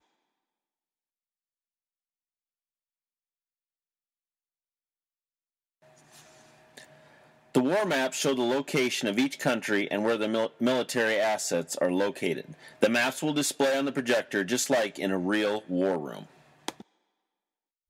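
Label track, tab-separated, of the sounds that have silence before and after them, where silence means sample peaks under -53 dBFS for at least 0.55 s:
5.830000	16.820000	sound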